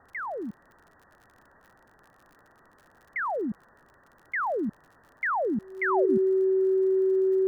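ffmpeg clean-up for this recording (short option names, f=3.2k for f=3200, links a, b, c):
-af "adeclick=t=4,bandreject=f=380:w=30,afwtdn=0.0035"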